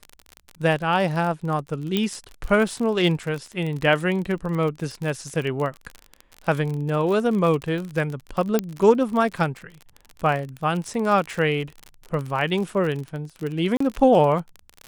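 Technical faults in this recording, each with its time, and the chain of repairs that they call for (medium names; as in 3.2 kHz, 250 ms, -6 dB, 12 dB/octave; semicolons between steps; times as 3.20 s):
crackle 39 per s -27 dBFS
1.97 s: pop -9 dBFS
8.59 s: pop -7 dBFS
13.77–13.80 s: dropout 34 ms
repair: de-click; interpolate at 13.77 s, 34 ms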